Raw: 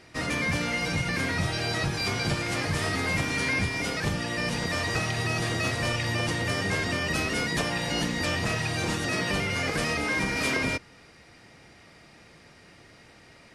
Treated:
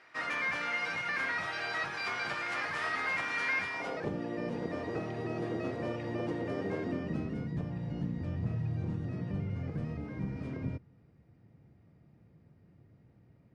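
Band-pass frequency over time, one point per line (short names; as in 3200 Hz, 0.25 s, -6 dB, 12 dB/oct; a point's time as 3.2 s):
band-pass, Q 1.3
3.69 s 1400 Hz
4.11 s 360 Hz
6.77 s 360 Hz
7.52 s 120 Hz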